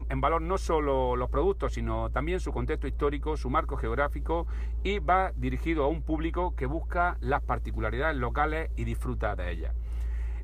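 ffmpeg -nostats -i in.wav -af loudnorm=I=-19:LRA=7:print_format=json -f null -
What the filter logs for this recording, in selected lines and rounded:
"input_i" : "-30.2",
"input_tp" : "-12.2",
"input_lra" : "2.5",
"input_thresh" : "-40.2",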